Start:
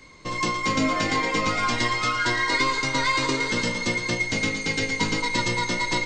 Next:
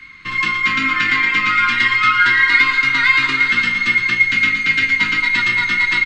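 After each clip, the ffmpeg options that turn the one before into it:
-filter_complex "[0:a]firequalizer=gain_entry='entry(240,0);entry(600,-21);entry(1300,13);entry(2500,13);entry(5800,-7)':delay=0.05:min_phase=1,acrossover=split=210[a][b];[a]alimiter=level_in=7dB:limit=-24dB:level=0:latency=1,volume=-7dB[c];[c][b]amix=inputs=2:normalize=0"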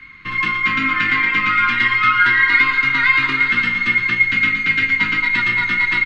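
-af "bass=f=250:g=2,treble=f=4k:g=-12"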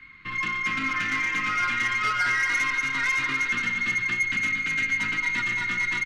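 -af "asoftclip=type=tanh:threshold=-12.5dB,aecho=1:1:253:0.316,volume=-7.5dB"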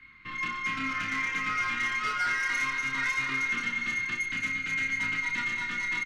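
-filter_complex "[0:a]asplit=2[a][b];[b]adelay=30,volume=-4.5dB[c];[a][c]amix=inputs=2:normalize=0,volume=-5.5dB"

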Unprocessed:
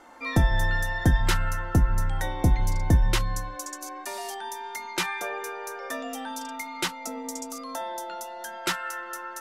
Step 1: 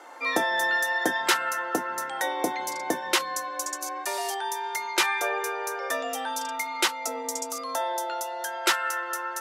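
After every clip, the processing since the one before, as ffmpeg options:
-af "highpass=f=350:w=0.5412,highpass=f=350:w=1.3066,volume=5dB"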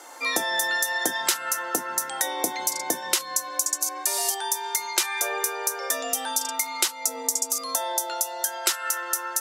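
-af "bass=f=250:g=2,treble=f=4k:g=15,acompressor=threshold=-21dB:ratio=4"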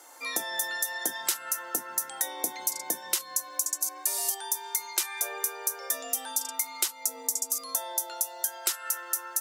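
-af "highshelf=f=9.4k:g=12,volume=-9dB"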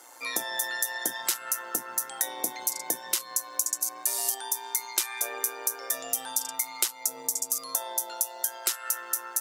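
-af "tremolo=f=120:d=0.519,volume=3dB"

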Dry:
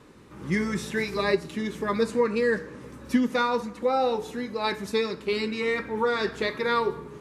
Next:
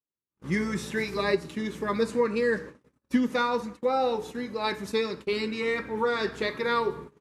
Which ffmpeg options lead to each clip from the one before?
-af "agate=range=-49dB:threshold=-38dB:ratio=16:detection=peak,volume=-1.5dB"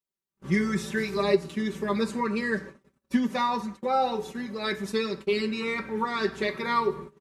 -af "aecho=1:1:5.2:0.82,volume=-1.5dB"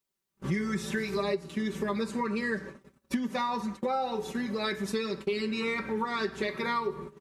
-af "acompressor=threshold=-36dB:ratio=4,volume=6.5dB"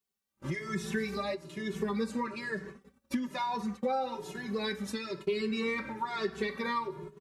-filter_complex "[0:a]asplit=2[a][b];[b]adelay=2.3,afreqshift=1.1[c];[a][c]amix=inputs=2:normalize=1"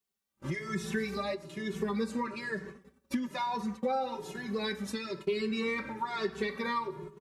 -filter_complex "[0:a]asplit=2[a][b];[b]adelay=117,lowpass=f=2k:p=1,volume=-22.5dB,asplit=2[c][d];[d]adelay=117,lowpass=f=2k:p=1,volume=0.49,asplit=2[e][f];[f]adelay=117,lowpass=f=2k:p=1,volume=0.49[g];[a][c][e][g]amix=inputs=4:normalize=0"

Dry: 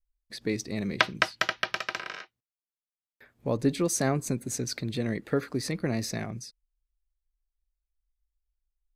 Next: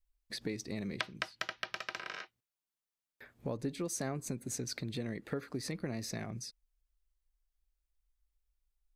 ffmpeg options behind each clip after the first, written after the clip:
-af "acompressor=threshold=-39dB:ratio=3,volume=1dB"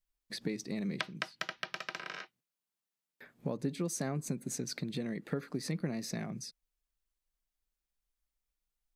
-af "lowshelf=f=120:t=q:w=3:g=-8.5"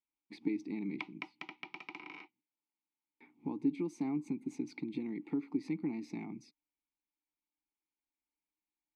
-filter_complex "[0:a]asplit=3[a][b][c];[a]bandpass=f=300:t=q:w=8,volume=0dB[d];[b]bandpass=f=870:t=q:w=8,volume=-6dB[e];[c]bandpass=f=2.24k:t=q:w=8,volume=-9dB[f];[d][e][f]amix=inputs=3:normalize=0,volume=10dB"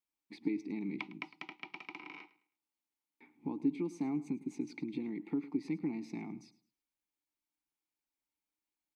-af "aecho=1:1:106|212|318:0.126|0.0365|0.0106"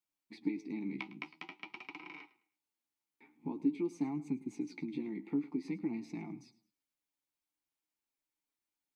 -af "flanger=delay=5.6:depth=9.9:regen=35:speed=0.48:shape=triangular,volume=3dB"

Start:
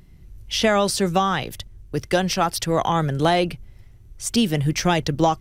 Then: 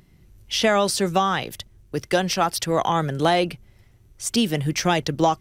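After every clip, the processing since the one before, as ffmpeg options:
-af "lowshelf=f=92:g=-12"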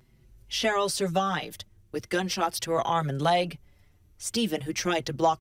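-filter_complex "[0:a]asplit=2[a][b];[b]adelay=5.7,afreqshift=0.39[c];[a][c]amix=inputs=2:normalize=1,volume=-2.5dB"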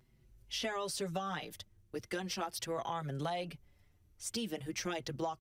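-af "acompressor=threshold=-26dB:ratio=6,volume=-7.5dB"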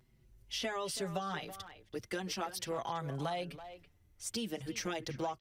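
-filter_complex "[0:a]asplit=2[a][b];[b]adelay=330,highpass=300,lowpass=3.4k,asoftclip=type=hard:threshold=-33dB,volume=-11dB[c];[a][c]amix=inputs=2:normalize=0"

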